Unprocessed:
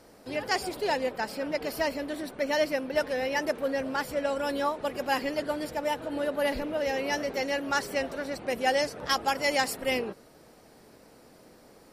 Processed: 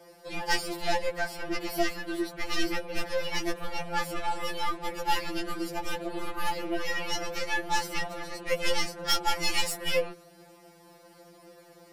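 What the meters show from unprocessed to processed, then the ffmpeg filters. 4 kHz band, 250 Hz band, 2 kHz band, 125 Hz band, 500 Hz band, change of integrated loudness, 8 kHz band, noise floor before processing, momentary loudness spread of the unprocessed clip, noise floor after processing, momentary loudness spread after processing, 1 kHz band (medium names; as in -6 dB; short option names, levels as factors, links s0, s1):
+3.0 dB, -2.5 dB, -1.0 dB, +2.5 dB, -5.5 dB, -1.5 dB, +2.5 dB, -55 dBFS, 6 LU, -55 dBFS, 7 LU, -1.0 dB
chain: -filter_complex "[0:a]afreqshift=25,aeval=exprs='0.266*(cos(1*acos(clip(val(0)/0.266,-1,1)))-cos(1*PI/2))+0.0473*(cos(3*acos(clip(val(0)/0.266,-1,1)))-cos(3*PI/2))+0.00668*(cos(5*acos(clip(val(0)/0.266,-1,1)))-cos(5*PI/2))+0.0168*(cos(6*acos(clip(val(0)/0.266,-1,1)))-cos(6*PI/2))':c=same,acrossover=split=100|460|2300[s0][s1][s2][s3];[s2]asoftclip=type=tanh:threshold=0.0316[s4];[s0][s1][s4][s3]amix=inputs=4:normalize=0,afftfilt=real='re*2.83*eq(mod(b,8),0)':imag='im*2.83*eq(mod(b,8),0)':win_size=2048:overlap=0.75,volume=2.51"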